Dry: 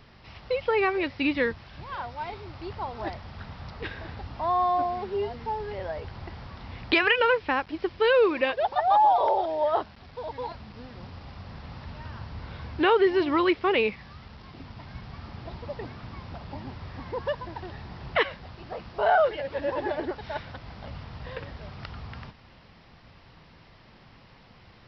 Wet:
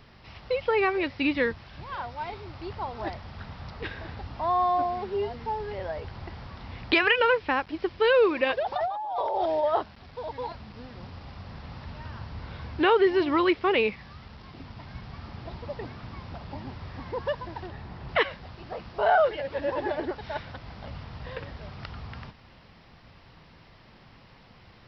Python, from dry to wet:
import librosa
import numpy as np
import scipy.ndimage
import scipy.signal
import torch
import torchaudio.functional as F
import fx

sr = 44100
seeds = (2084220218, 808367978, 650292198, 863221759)

y = fx.over_compress(x, sr, threshold_db=-27.0, ratio=-1.0, at=(8.44, 9.62), fade=0.02)
y = fx.high_shelf(y, sr, hz=3600.0, db=-7.0, at=(17.67, 18.09))